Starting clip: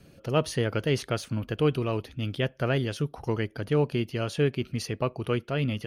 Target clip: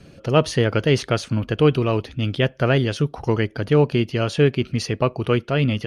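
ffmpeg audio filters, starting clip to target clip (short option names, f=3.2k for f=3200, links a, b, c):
-af "lowpass=7.6k,volume=8dB"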